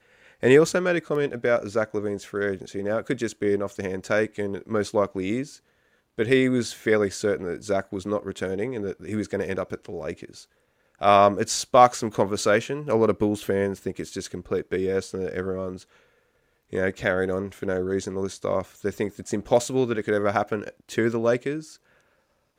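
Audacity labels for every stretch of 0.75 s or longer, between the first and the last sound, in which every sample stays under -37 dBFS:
15.820000	16.730000	silence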